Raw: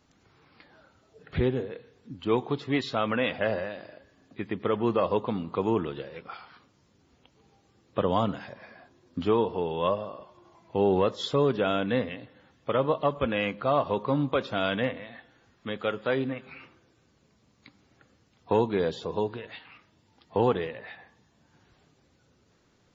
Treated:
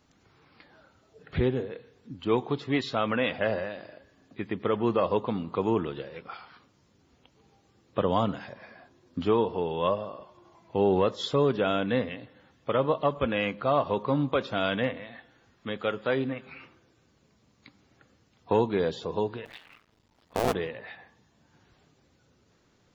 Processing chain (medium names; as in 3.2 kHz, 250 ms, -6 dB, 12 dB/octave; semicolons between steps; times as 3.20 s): 19.45–20.55 s: cycle switcher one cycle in 2, muted